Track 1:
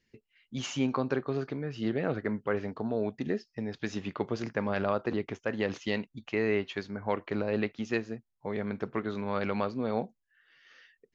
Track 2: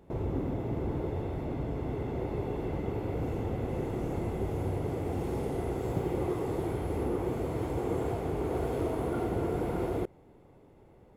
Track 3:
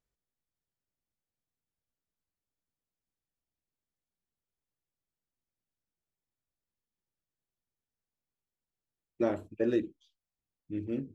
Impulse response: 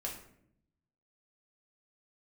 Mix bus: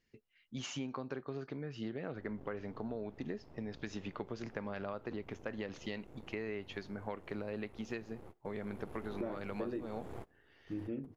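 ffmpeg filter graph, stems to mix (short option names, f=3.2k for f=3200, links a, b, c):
-filter_complex "[0:a]volume=-5dB,asplit=2[a][b];[1:a]aeval=exprs='max(val(0),0)':c=same,adelay=2050,volume=-8.5dB,afade=t=in:st=8.54:d=0.54:silence=0.334965[c];[2:a]lowpass=2.6k,volume=0dB[d];[b]apad=whole_len=587389[e];[c][e]sidechaingate=range=-27dB:threshold=-60dB:ratio=16:detection=peak[f];[a][f][d]amix=inputs=3:normalize=0,acompressor=threshold=-37dB:ratio=5"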